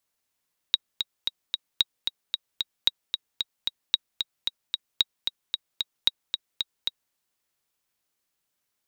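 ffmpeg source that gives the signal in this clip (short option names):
-f lavfi -i "aevalsrc='pow(10,(-6-6.5*gte(mod(t,4*60/225),60/225))/20)*sin(2*PI*3810*mod(t,60/225))*exp(-6.91*mod(t,60/225)/0.03)':d=6.4:s=44100"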